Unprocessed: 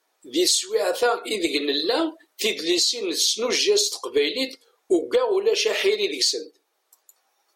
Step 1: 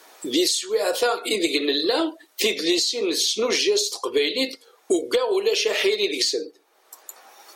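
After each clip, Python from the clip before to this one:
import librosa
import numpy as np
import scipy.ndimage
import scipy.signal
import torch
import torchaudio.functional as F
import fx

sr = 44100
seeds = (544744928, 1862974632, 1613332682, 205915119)

y = fx.band_squash(x, sr, depth_pct=70)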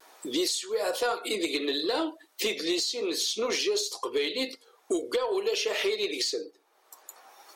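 y = fx.peak_eq(x, sr, hz=980.0, db=3.5, octaves=1.1)
y = 10.0 ** (-11.0 / 20.0) * np.tanh(y / 10.0 ** (-11.0 / 20.0))
y = fx.vibrato(y, sr, rate_hz=0.38, depth_cents=16.0)
y = y * librosa.db_to_amplitude(-6.5)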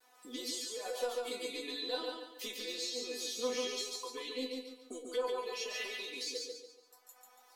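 y = fx.comb_fb(x, sr, f0_hz=250.0, decay_s=0.18, harmonics='all', damping=0.0, mix_pct=100)
y = fx.echo_feedback(y, sr, ms=142, feedback_pct=36, wet_db=-3)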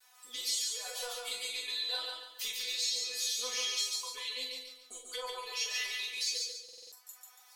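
y = fx.tone_stack(x, sr, knobs='10-0-10')
y = fx.doubler(y, sr, ms=43.0, db=-8.5)
y = fx.buffer_glitch(y, sr, at_s=(6.64,), block=2048, repeats=5)
y = y * librosa.db_to_amplitude(7.5)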